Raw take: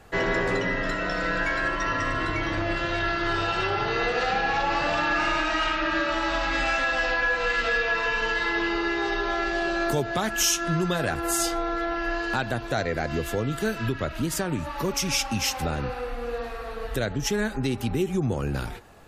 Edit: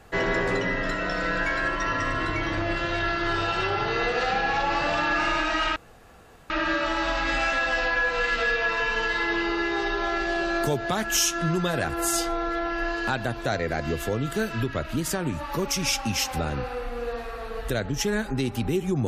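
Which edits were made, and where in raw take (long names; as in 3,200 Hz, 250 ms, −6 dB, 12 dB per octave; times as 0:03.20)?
0:05.76: splice in room tone 0.74 s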